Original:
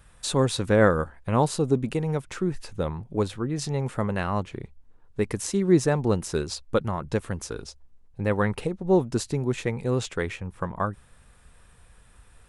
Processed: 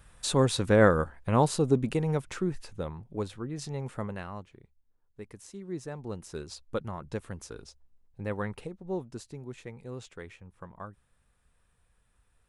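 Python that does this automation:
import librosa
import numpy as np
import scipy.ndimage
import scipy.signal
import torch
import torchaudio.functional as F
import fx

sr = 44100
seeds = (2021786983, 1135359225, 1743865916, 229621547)

y = fx.gain(x, sr, db=fx.line((2.26, -1.5), (2.9, -8.0), (4.03, -8.0), (4.58, -18.5), (5.69, -18.5), (6.66, -9.0), (8.34, -9.0), (9.24, -15.5)))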